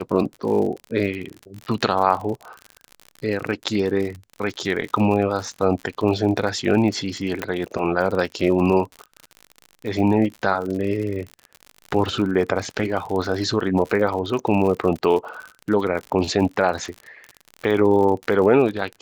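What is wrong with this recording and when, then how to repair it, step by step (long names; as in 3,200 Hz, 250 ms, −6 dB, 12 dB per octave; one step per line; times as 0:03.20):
surface crackle 52 per second −28 dBFS
0:07.42: click −12 dBFS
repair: click removal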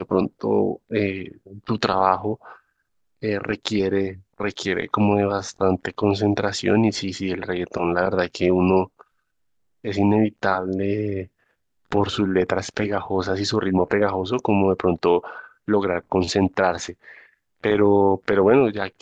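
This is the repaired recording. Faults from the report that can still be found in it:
none of them is left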